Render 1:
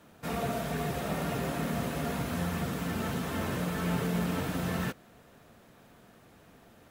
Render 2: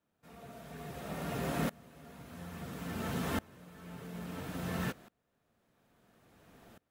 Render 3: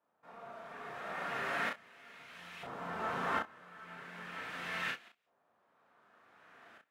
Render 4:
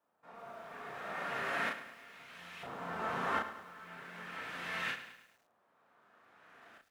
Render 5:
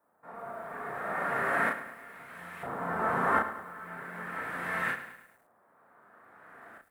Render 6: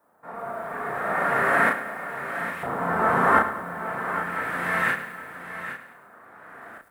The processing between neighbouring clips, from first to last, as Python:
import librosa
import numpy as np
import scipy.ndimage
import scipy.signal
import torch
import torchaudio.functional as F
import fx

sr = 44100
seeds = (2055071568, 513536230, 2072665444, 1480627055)

y1 = fx.tremolo_decay(x, sr, direction='swelling', hz=0.59, depth_db=27)
y1 = y1 * 10.0 ** (1.0 / 20.0)
y2 = fx.filter_lfo_bandpass(y1, sr, shape='saw_up', hz=0.38, low_hz=890.0, high_hz=2700.0, q=1.5)
y2 = fx.room_early_taps(y2, sr, ms=(35, 63), db=(-3.0, -15.0))
y2 = y2 * 10.0 ** (7.0 / 20.0)
y3 = fx.echo_crushed(y2, sr, ms=105, feedback_pct=55, bits=10, wet_db=-12.0)
y4 = fx.band_shelf(y3, sr, hz=4100.0, db=-14.5, octaves=1.7)
y4 = y4 * 10.0 ** (8.0 / 20.0)
y5 = y4 + 10.0 ** (-11.0 / 20.0) * np.pad(y4, (int(813 * sr / 1000.0), 0))[:len(y4)]
y5 = y5 * 10.0 ** (8.0 / 20.0)